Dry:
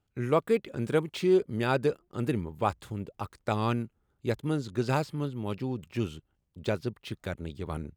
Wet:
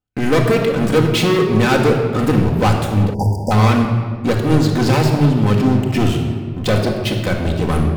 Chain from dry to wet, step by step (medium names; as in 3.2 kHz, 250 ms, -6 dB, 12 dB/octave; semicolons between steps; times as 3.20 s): waveshaping leveller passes 5; simulated room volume 2300 m³, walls mixed, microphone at 2 m; spectral selection erased 3.14–3.51 s, 1–4.6 kHz